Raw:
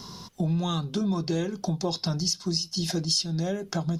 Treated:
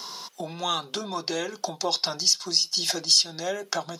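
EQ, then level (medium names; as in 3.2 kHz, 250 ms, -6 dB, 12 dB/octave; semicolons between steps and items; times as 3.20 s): high-pass 620 Hz 12 dB/octave; +7.0 dB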